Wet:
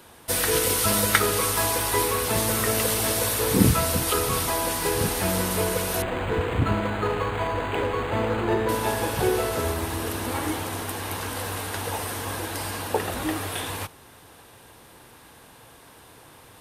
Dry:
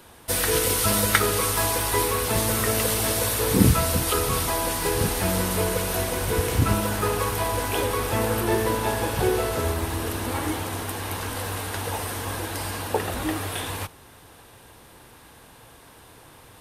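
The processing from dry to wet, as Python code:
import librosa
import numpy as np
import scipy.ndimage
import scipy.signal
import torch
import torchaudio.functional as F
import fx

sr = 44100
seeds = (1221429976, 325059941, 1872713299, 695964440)

y = fx.low_shelf(x, sr, hz=62.0, db=-8.0)
y = fx.resample_linear(y, sr, factor=8, at=(6.02, 8.69))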